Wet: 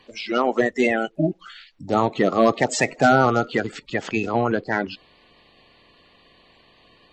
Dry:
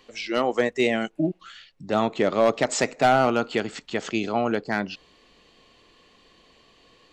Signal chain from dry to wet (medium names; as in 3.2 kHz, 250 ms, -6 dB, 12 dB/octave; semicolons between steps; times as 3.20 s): coarse spectral quantiser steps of 30 dB; treble shelf 5.8 kHz -9 dB, from 1.38 s -2.5 dB, from 3.45 s -9.5 dB; trim +3.5 dB